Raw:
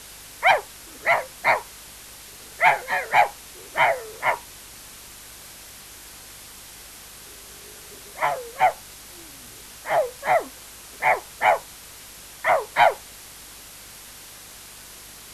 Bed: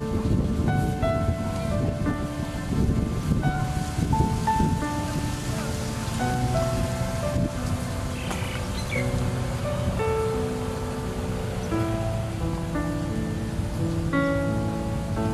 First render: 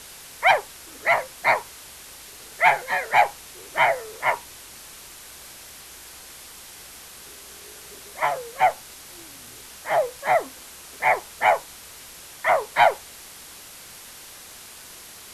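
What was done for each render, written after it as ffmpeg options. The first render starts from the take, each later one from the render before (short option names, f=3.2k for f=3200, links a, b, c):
-af "bandreject=f=50:t=h:w=4,bandreject=f=100:t=h:w=4,bandreject=f=150:t=h:w=4,bandreject=f=200:t=h:w=4,bandreject=f=250:t=h:w=4,bandreject=f=300:t=h:w=4"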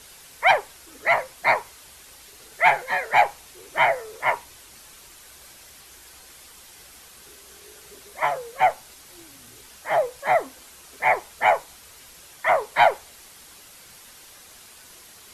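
-af "afftdn=nr=6:nf=-44"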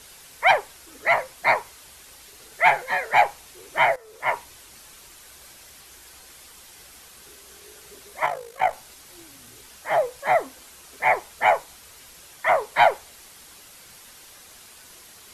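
-filter_complex "[0:a]asettb=1/sr,asplit=3[a][b][c];[a]atrim=end=8.264[d];[b]atrim=start=8.26:end=8.73,asetpts=PTS-STARTPTS,afade=t=in:d=0.004:c=qsin,afade=t=out:st=0.466:d=0.004:c=qsin,tremolo=f=53:d=0.71[e];[c]atrim=start=8.726[f];[d][e]acrossfade=d=0.004:c1=hsin:c2=qsin[g];[g][f]acrossfade=d=0.004:c1=qsin:c2=hsin,asplit=2[h][i];[h]atrim=end=3.96,asetpts=PTS-STARTPTS,afade=t=out:st=3.956:d=0.004:c=hsin:silence=0.16788[j];[i]atrim=start=3.96,asetpts=PTS-STARTPTS,afade=t=in:d=0.42:silence=0.16788[k];[j][k]concat=n=2:v=0:a=1"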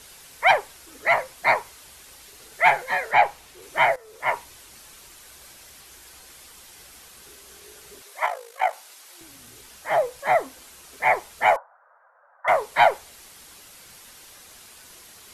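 -filter_complex "[0:a]asettb=1/sr,asplit=3[a][b][c];[a]atrim=end=3.114[d];[b]atrim=start=3.11:end=3.62,asetpts=PTS-STARTPTS,afade=t=in:d=0.004:c=qsin,afade=t=out:st=0.506:d=0.004:c=qsin,acrossover=split=4400[e][f];[f]acompressor=threshold=-49dB:ratio=4:attack=1:release=60[g];[e][g]amix=inputs=2:normalize=0[h];[c]atrim=start=3.616[i];[d][h]acrossfade=d=0.004:c1=hsin:c2=qsin[j];[j][i]acrossfade=d=0.004:c1=qsin:c2=hsin,asettb=1/sr,asplit=3[k][l][m];[k]atrim=end=8.024[n];[l]atrim=start=8.02:end=9.21,asetpts=PTS-STARTPTS,afade=t=in:d=0.004:c=qsin,afade=t=out:st=1.186:d=0.004:c=qsin,highpass=550[o];[m]atrim=start=9.206[p];[n][o]acrossfade=d=0.004:c1=hsin:c2=qsin[q];[q][p]acrossfade=d=0.004:c1=qsin:c2=hsin,asettb=1/sr,asplit=3[r][s][t];[r]atrim=end=11.564[u];[s]atrim=start=11.56:end=12.48,asetpts=PTS-STARTPTS,afade=t=in:d=0.004:c=qsin,afade=t=out:st=0.916:d=0.004:c=qsin,asuperpass=centerf=930:order=12:qfactor=0.88[v];[t]atrim=start=12.476[w];[u][v]acrossfade=d=0.004:c1=hsin:c2=qsin[x];[x][w]acrossfade=d=0.004:c1=qsin:c2=hsin"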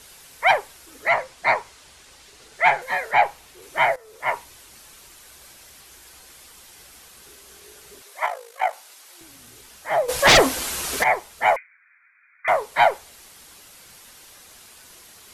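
-filter_complex "[0:a]asettb=1/sr,asplit=3[a][b][c];[a]atrim=end=1.094[d];[b]atrim=start=1.09:end=2.82,asetpts=PTS-STARTPTS,afade=t=in:d=0.004:c=qsin,afade=t=out:st=1.726:d=0.004:c=qsin,lowpass=8.1k[e];[c]atrim=start=2.816[f];[d][e]acrossfade=d=0.004:c1=hsin:c2=qsin[g];[g][f]acrossfade=d=0.004:c1=qsin:c2=hsin,asplit=3[h][i][j];[h]afade=t=out:st=10.08:d=0.02[k];[i]aeval=exprs='0.376*sin(PI/2*5.62*val(0)/0.376)':c=same,afade=t=in:st=10.08:d=0.02,afade=t=out:st=11.02:d=0.02[l];[j]afade=t=in:st=11.02:d=0.02[m];[k][l][m]amix=inputs=3:normalize=0,asettb=1/sr,asplit=3[n][o][p];[n]atrim=end=11.564[q];[o]atrim=start=11.56:end=12.48,asetpts=PTS-STARTPTS,afade=t=in:d=0.004:c=qsin,afade=t=out:st=0.916:d=0.004:c=qsin,lowpass=f=2.6k:t=q:w=0.5098,lowpass=f=2.6k:t=q:w=0.6013,lowpass=f=2.6k:t=q:w=0.9,lowpass=f=2.6k:t=q:w=2.563,afreqshift=-3000[r];[p]atrim=start=12.476[s];[q][r]acrossfade=d=0.004:c1=hsin:c2=qsin[t];[t][s]acrossfade=d=0.004:c1=qsin:c2=hsin"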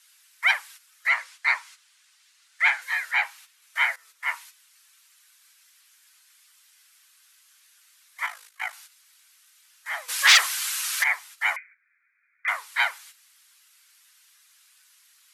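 -af "agate=range=-11dB:threshold=-41dB:ratio=16:detection=peak,highpass=f=1.3k:w=0.5412,highpass=f=1.3k:w=1.3066"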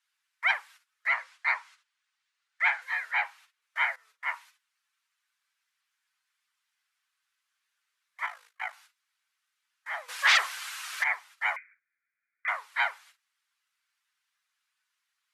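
-af "lowpass=f=1.4k:p=1,agate=range=-12dB:threshold=-59dB:ratio=16:detection=peak"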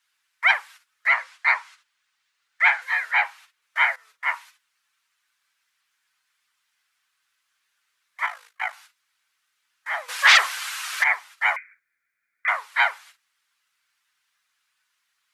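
-af "volume=7.5dB"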